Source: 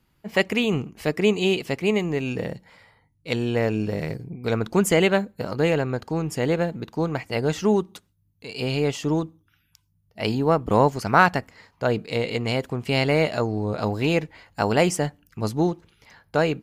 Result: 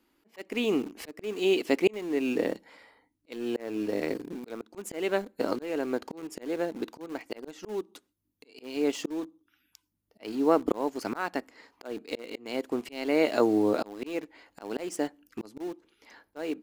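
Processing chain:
low shelf with overshoot 200 Hz −12.5 dB, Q 3
volume swells 602 ms
in parallel at −11.5 dB: bit reduction 6 bits
on the sum: level −2 dB

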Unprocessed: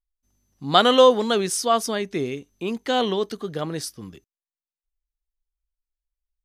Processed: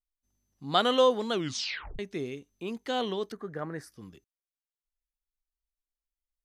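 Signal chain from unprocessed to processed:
0:01.32: tape stop 0.67 s
0:03.32–0:03.92: high shelf with overshoot 2,400 Hz −10 dB, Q 3
level −8.5 dB

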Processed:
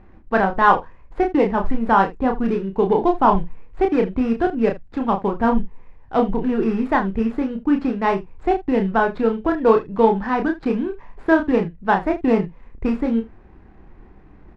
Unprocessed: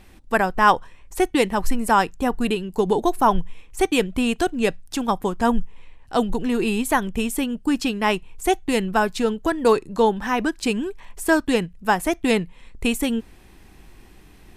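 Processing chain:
running median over 15 samples
low-pass filter 2,300 Hz 12 dB per octave
ambience of single reflections 31 ms −4.5 dB, 77 ms −17 dB
level +1.5 dB

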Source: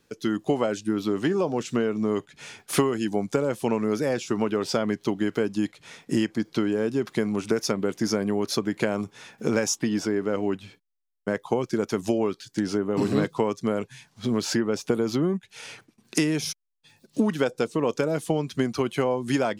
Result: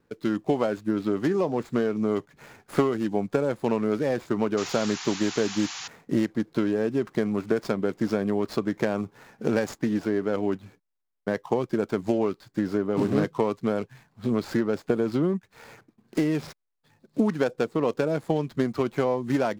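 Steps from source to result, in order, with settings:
running median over 15 samples
sound drawn into the spectrogram noise, 0:04.57–0:05.88, 700–7,300 Hz −37 dBFS
highs frequency-modulated by the lows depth 0.14 ms

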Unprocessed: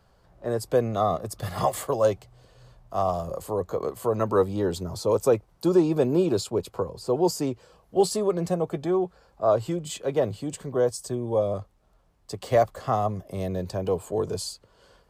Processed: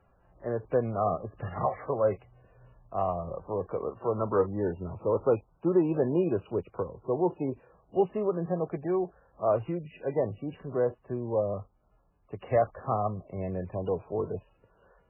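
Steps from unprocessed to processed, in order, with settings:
high-frequency loss of the air 94 metres
level −3.5 dB
MP3 8 kbit/s 11,025 Hz

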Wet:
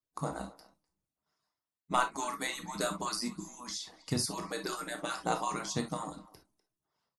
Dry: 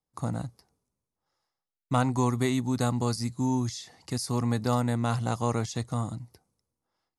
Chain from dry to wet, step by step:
harmonic-percussive split with one part muted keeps percussive
far-end echo of a speakerphone 250 ms, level −20 dB
on a send at −4 dB: convolution reverb, pre-delay 6 ms
on the sum: every ending faded ahead of time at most 340 dB per second

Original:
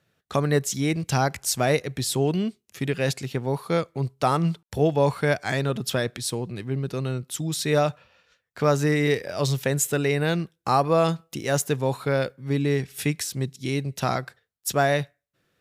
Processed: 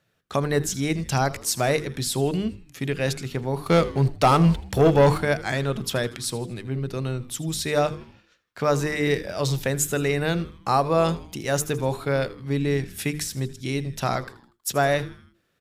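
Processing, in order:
mains-hum notches 50/100/150/200/250/300/350/400/450/500 Hz
0:03.66–0:05.18: leveller curve on the samples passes 2
echo with shifted repeats 80 ms, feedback 50%, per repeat −120 Hz, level −17 dB

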